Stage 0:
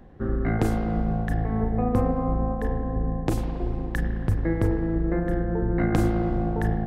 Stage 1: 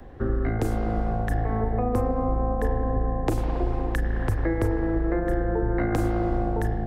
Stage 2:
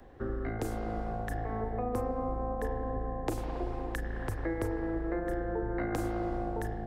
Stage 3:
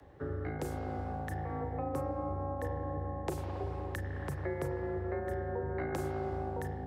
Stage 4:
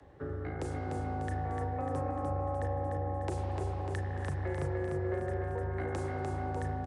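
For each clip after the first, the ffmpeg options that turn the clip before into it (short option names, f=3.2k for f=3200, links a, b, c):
-filter_complex "[0:a]acrossover=split=520|5200[a][b][c];[a]acompressor=threshold=-27dB:ratio=4[d];[b]acompressor=threshold=-45dB:ratio=4[e];[c]acompressor=threshold=-53dB:ratio=4[f];[d][e][f]amix=inputs=3:normalize=0,equalizer=f=180:w=2.6:g=-11.5,acrossover=split=290|520|2200[g][h][i][j];[i]dynaudnorm=f=540:g=3:m=6dB[k];[g][h][k][j]amix=inputs=4:normalize=0,volume=6.5dB"
-af "bass=f=250:g=-5,treble=f=4k:g=3,volume=-6.5dB"
-af "afreqshift=39,volume=-3dB"
-filter_complex "[0:a]asoftclip=type=tanh:threshold=-26.5dB,asplit=2[a][b];[b]aecho=0:1:298|596|894|1192|1490|1788|2086:0.562|0.309|0.17|0.0936|0.0515|0.0283|0.0156[c];[a][c]amix=inputs=2:normalize=0,aresample=22050,aresample=44100"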